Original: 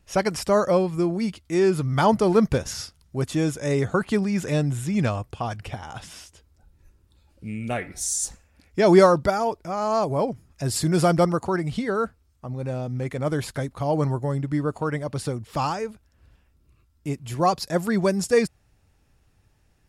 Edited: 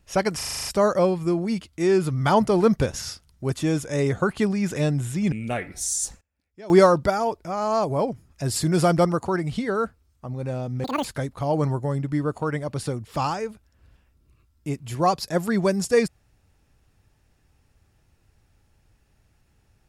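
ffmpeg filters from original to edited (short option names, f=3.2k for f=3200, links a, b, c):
-filter_complex "[0:a]asplit=13[a][b][c][d][e][f][g][h][i][j][k][l][m];[a]atrim=end=0.412[n];[b]atrim=start=0.368:end=0.412[o];[c]atrim=start=0.368:end=0.412[p];[d]atrim=start=0.368:end=0.412[q];[e]atrim=start=0.368:end=0.412[r];[f]atrim=start=0.368:end=0.412[s];[g]atrim=start=0.368:end=0.412[t];[h]atrim=start=0.368:end=5.042[u];[i]atrim=start=7.518:end=8.41,asetpts=PTS-STARTPTS,afade=t=out:st=0.722:d=0.17:c=log:silence=0.0794328[v];[j]atrim=start=8.41:end=8.9,asetpts=PTS-STARTPTS,volume=-22dB[w];[k]atrim=start=8.9:end=13.044,asetpts=PTS-STARTPTS,afade=t=in:d=0.17:c=log:silence=0.0794328[x];[l]atrim=start=13.04:end=13.44,asetpts=PTS-STARTPTS,asetrate=86436,aresample=44100[y];[m]atrim=start=13.436[z];[n][o]acrossfade=d=0.004:c1=hsin:c2=hsin[aa];[aa][p]acrossfade=d=0.004:c1=hsin:c2=hsin[ab];[ab][q]acrossfade=d=0.004:c1=hsin:c2=hsin[ac];[ac][r]acrossfade=d=0.004:c1=hsin:c2=hsin[ad];[ad][s]acrossfade=d=0.004:c1=hsin:c2=hsin[ae];[ae][t]acrossfade=d=0.004:c1=hsin:c2=hsin[af];[af][u]acrossfade=d=0.004:c1=hsin:c2=hsin[ag];[v][w][x]concat=n=3:v=0:a=1[ah];[ag][ah]acrossfade=d=0.004:c1=hsin:c2=hsin[ai];[ai][y]acrossfade=d=0.004:c1=hsin:c2=hsin[aj];[aj][z]acrossfade=d=0.004:c1=hsin:c2=hsin"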